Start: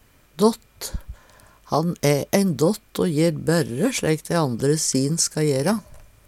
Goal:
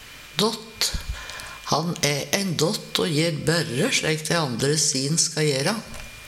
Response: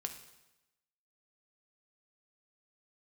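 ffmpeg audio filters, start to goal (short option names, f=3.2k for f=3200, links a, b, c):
-filter_complex "[0:a]equalizer=f=3.4k:w=0.4:g=15,acompressor=threshold=-27dB:ratio=6,asplit=2[a][b];[1:a]atrim=start_sample=2205[c];[b][c]afir=irnorm=-1:irlink=0,volume=3.5dB[d];[a][d]amix=inputs=2:normalize=0"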